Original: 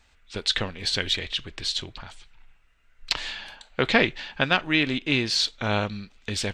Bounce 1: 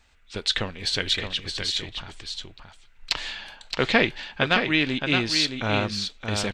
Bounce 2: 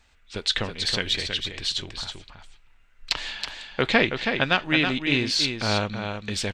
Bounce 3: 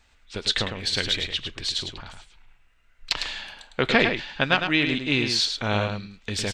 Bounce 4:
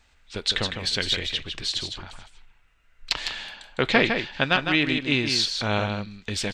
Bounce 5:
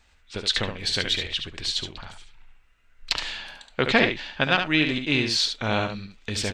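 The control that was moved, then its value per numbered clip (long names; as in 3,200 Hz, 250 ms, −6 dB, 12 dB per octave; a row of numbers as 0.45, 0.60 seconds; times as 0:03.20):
single-tap delay, delay time: 620, 324, 105, 156, 71 milliseconds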